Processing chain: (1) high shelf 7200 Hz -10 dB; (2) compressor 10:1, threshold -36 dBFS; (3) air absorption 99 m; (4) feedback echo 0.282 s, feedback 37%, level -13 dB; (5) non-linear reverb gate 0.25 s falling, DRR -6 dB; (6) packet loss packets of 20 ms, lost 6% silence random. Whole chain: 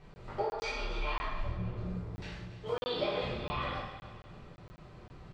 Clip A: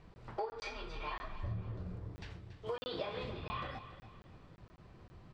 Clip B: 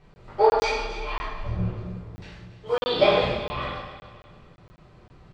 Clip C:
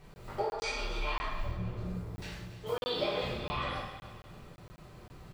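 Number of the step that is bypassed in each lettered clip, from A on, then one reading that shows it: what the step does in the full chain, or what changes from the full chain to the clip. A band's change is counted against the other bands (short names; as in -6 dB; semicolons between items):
5, momentary loudness spread change -1 LU; 2, mean gain reduction 4.5 dB; 3, 4 kHz band +2.0 dB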